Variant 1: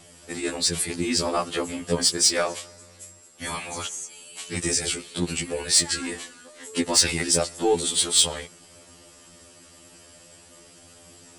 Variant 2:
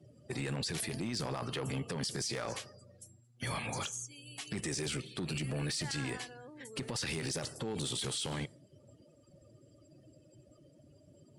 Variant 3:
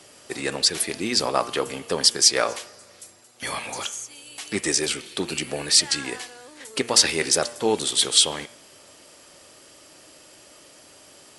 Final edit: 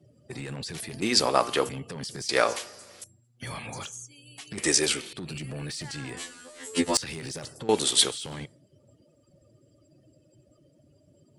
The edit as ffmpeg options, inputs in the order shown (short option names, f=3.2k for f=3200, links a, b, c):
-filter_complex "[2:a]asplit=4[a][b][c][d];[1:a]asplit=6[e][f][g][h][i][j];[e]atrim=end=1.022[k];[a]atrim=start=1.018:end=1.692[l];[f]atrim=start=1.688:end=2.292[m];[b]atrim=start=2.288:end=3.042[n];[g]atrim=start=3.038:end=4.582[o];[c]atrim=start=4.578:end=5.132[p];[h]atrim=start=5.128:end=6.172[q];[0:a]atrim=start=6.168:end=6.972[r];[i]atrim=start=6.968:end=7.692[s];[d]atrim=start=7.688:end=8.112[t];[j]atrim=start=8.108[u];[k][l]acrossfade=d=0.004:c1=hsin:c2=hsin[v];[v][m]acrossfade=d=0.004:c1=hsin:c2=hsin[w];[w][n]acrossfade=d=0.004:c1=hsin:c2=hsin[x];[x][o]acrossfade=d=0.004:c1=hsin:c2=hsin[y];[y][p]acrossfade=d=0.004:c1=hsin:c2=hsin[z];[z][q]acrossfade=d=0.004:c1=hsin:c2=hsin[aa];[aa][r]acrossfade=d=0.004:c1=hsin:c2=hsin[ab];[ab][s]acrossfade=d=0.004:c1=hsin:c2=hsin[ac];[ac][t]acrossfade=d=0.004:c1=hsin:c2=hsin[ad];[ad][u]acrossfade=d=0.004:c1=hsin:c2=hsin"